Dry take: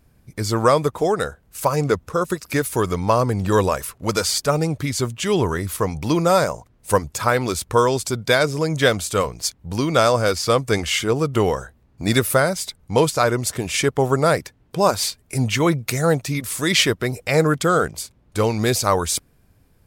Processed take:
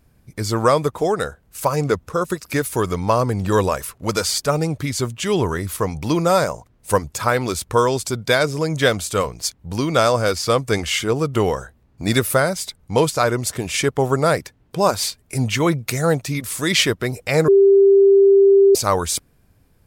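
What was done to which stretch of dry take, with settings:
17.48–18.75 bleep 394 Hz -8 dBFS

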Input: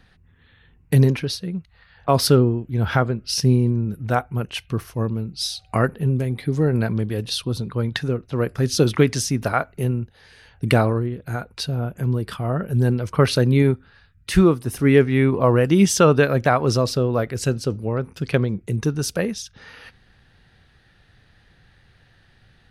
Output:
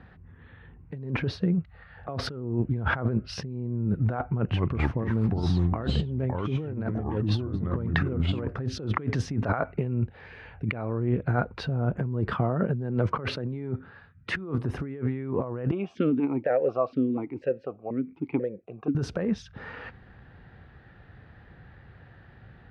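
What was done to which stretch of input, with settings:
1.55–2.29 notch 1000 Hz, Q 6.6
4.32–8.48 echoes that change speed 0.192 s, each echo -4 st, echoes 2
9.65–11.25 bell 2400 Hz +8.5 dB 0.36 oct
12.33–14.58 HPF 110 Hz
15.71–18.95 vowel sequencer 4.1 Hz
whole clip: LPF 1500 Hz 12 dB/oct; negative-ratio compressor -28 dBFS, ratio -1; HPF 48 Hz

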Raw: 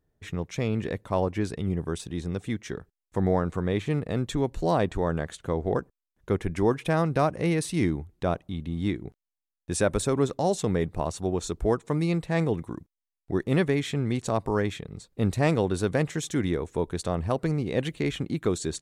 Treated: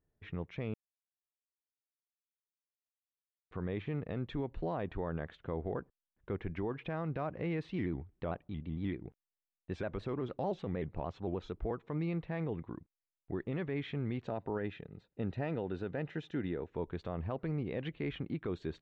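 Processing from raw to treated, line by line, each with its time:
0.74–3.51 mute
7.71–11.71 shaped vibrato square 6.6 Hz, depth 100 cents
14.27–16.71 notch comb 1100 Hz
whole clip: LPF 3100 Hz 24 dB/oct; limiter -19 dBFS; gain -8 dB

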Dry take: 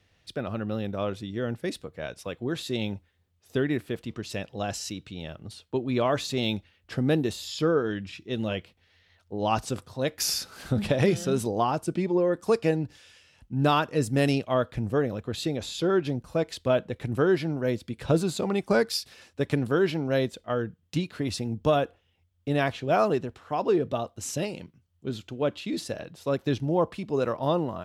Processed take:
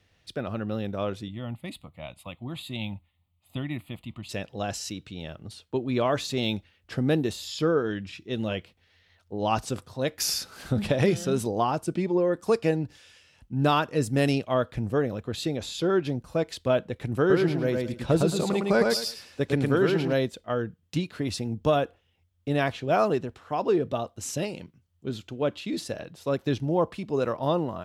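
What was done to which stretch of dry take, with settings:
1.28–4.29 fixed phaser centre 1600 Hz, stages 6
17.19–20.13 feedback echo 0.109 s, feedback 23%, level -3 dB

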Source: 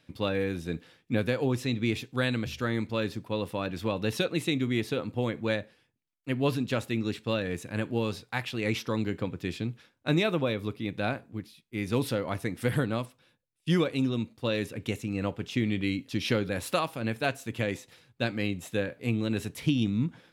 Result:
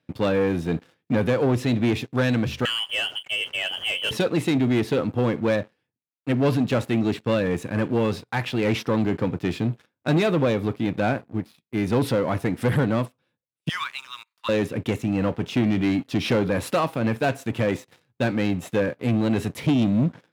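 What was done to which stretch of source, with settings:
2.65–4.11 inverted band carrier 3200 Hz
13.69–14.49 steep high-pass 960 Hz 72 dB/oct
whole clip: sample leveller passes 3; HPF 89 Hz; high shelf 2400 Hz -9.5 dB

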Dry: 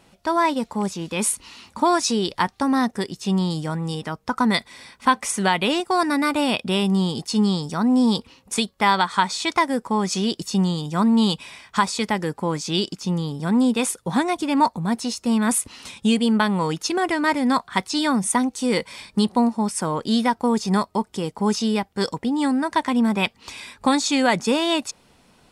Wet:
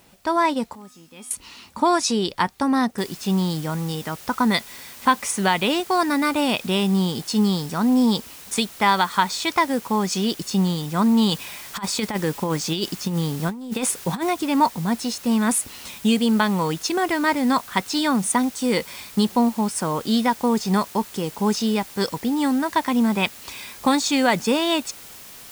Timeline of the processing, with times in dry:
0.75–1.31 resonator 250 Hz, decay 0.6 s, harmonics odd, mix 90%
2.98 noise floor step -60 dB -42 dB
11.3–14.3 negative-ratio compressor -23 dBFS, ratio -0.5

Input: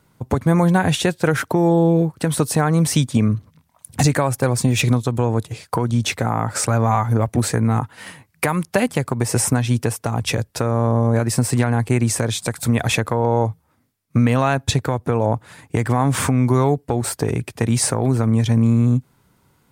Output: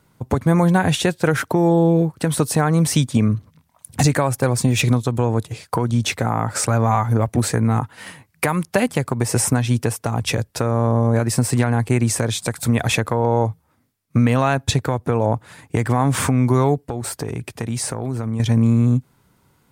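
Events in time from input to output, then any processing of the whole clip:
16.87–18.4 compressor 2:1, threshold -25 dBFS

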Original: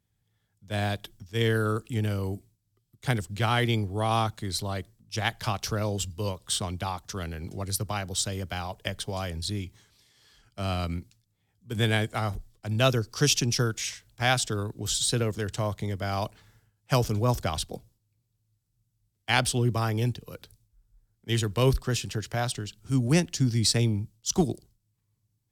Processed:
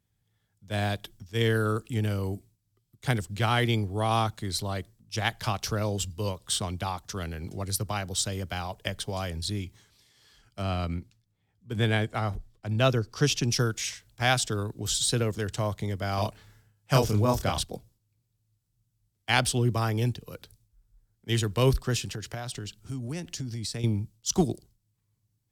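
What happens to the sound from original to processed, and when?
10.62–13.43 high shelf 5000 Hz -10 dB
16.15–17.63 doubler 29 ms -3 dB
22.13–23.84 compressor, threshold -31 dBFS

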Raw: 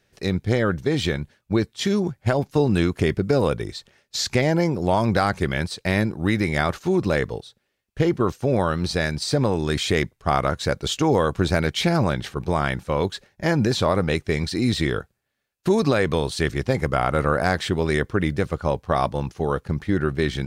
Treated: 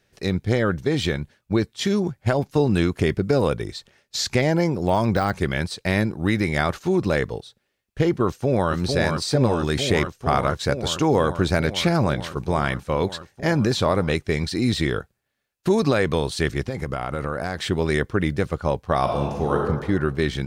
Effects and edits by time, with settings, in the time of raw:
4.83–5.34 de-esser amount 70%
8.26–8.72 echo throw 0.45 s, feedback 85%, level -4.5 dB
16.63–17.65 compressor, threshold -22 dBFS
19.02–19.58 reverb throw, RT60 1.3 s, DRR -0.5 dB

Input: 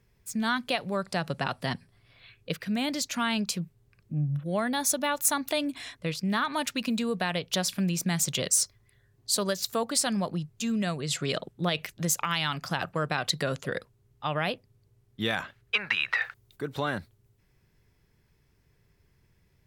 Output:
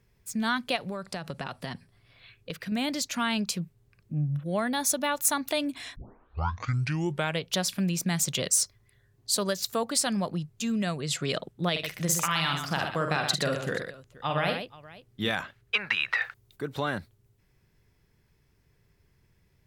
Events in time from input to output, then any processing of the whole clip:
0.76–2.72 compressor, threshold -30 dBFS
5.96 tape start 1.48 s
11.71–15.29 tapped delay 49/75/122/479 ms -5.5/-19.5/-7/-19.5 dB

